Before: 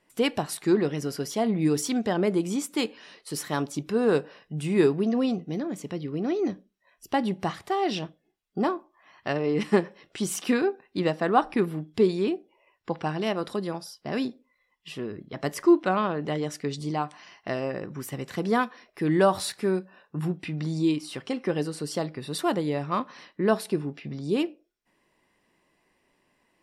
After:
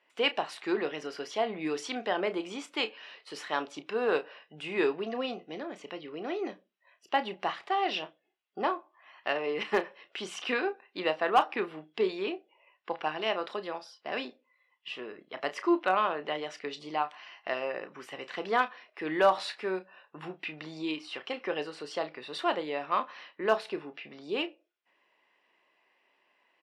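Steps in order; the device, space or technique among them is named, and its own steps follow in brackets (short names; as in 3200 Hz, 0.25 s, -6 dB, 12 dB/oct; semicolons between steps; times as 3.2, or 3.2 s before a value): megaphone (BPF 560–3400 Hz; bell 2800 Hz +5 dB 0.52 oct; hard clip -14 dBFS, distortion -24 dB; doubler 32 ms -12 dB)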